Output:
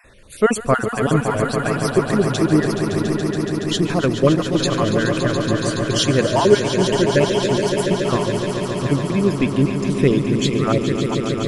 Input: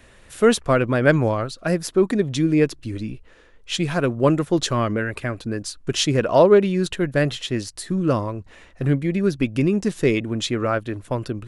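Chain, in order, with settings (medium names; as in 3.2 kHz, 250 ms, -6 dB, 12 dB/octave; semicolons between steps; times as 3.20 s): random holes in the spectrogram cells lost 36%; echo with a slow build-up 141 ms, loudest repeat 5, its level -9.5 dB; trim +2.5 dB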